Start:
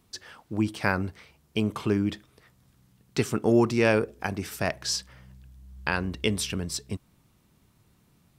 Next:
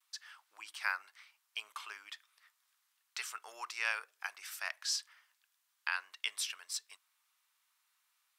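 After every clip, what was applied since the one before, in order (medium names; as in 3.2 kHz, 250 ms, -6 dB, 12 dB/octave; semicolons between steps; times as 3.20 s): gate with hold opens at -57 dBFS; high-pass 1.1 kHz 24 dB/octave; trim -6 dB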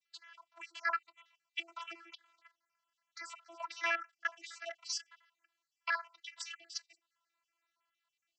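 random holes in the spectrogram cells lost 51%; level held to a coarse grid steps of 13 dB; vocoder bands 32, saw 336 Hz; trim +8 dB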